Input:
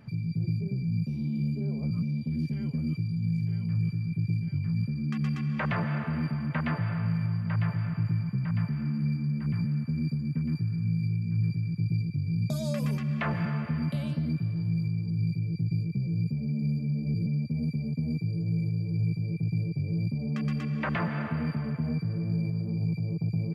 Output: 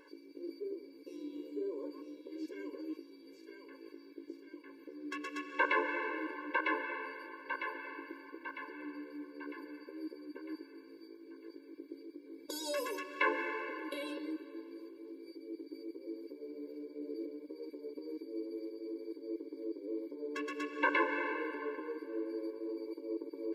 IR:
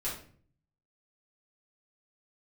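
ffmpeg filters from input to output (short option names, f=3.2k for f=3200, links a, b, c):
-filter_complex "[0:a]asplit=2[a][b];[b]acrossover=split=270 3700:gain=0.0631 1 0.0708[c][d][e];[c][d][e]amix=inputs=3:normalize=0[f];[1:a]atrim=start_sample=2205,highshelf=f=2.5k:g=9[g];[f][g]afir=irnorm=-1:irlink=0,volume=-18dB[h];[a][h]amix=inputs=2:normalize=0,afftfilt=real='re*eq(mod(floor(b*sr/1024/290),2),1)':imag='im*eq(mod(floor(b*sr/1024/290),2),1)':win_size=1024:overlap=0.75,volume=5.5dB"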